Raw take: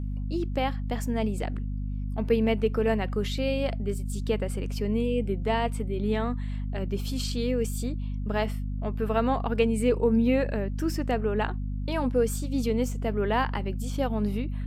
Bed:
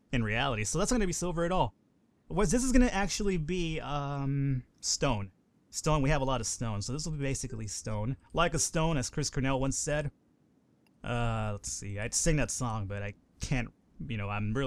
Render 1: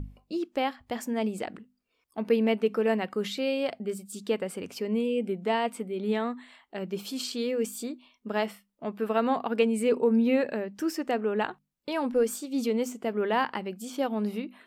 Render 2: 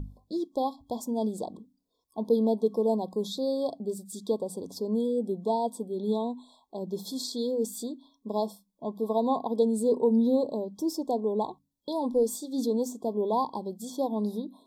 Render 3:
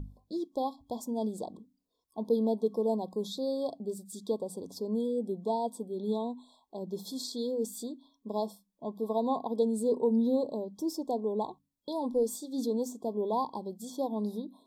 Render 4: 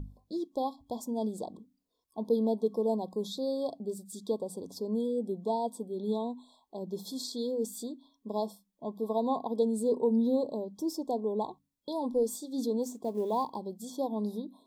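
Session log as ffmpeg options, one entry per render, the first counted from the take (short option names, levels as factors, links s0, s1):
-af "bandreject=f=50:t=h:w=6,bandreject=f=100:t=h:w=6,bandreject=f=150:t=h:w=6,bandreject=f=200:t=h:w=6,bandreject=f=250:t=h:w=6"
-af "afftfilt=real='re*(1-between(b*sr/4096,1100,3300))':imag='im*(1-between(b*sr/4096,1100,3300))':win_size=4096:overlap=0.75,bandreject=f=93.17:t=h:w=4,bandreject=f=186.34:t=h:w=4,bandreject=f=279.51:t=h:w=4"
-af "volume=0.668"
-filter_complex "[0:a]asettb=1/sr,asplit=3[s0][s1][s2];[s0]atrim=end=12.834[s3];[s1]atrim=start=12.83:end=13.56,asetpts=PTS-STARTPTS,afade=t=in:d=0.004:c=qsin,afade=t=out:st=0.726:d=0.004:c=qsin,acrusher=bits=8:mode=log:mix=0:aa=0.000001[s4];[s2]atrim=start=13.556[s5];[s3][s4]acrossfade=d=0.004:c1=hsin:c2=qsin[s6];[s6][s5]acrossfade=d=0.004:c1=qsin:c2=hsin"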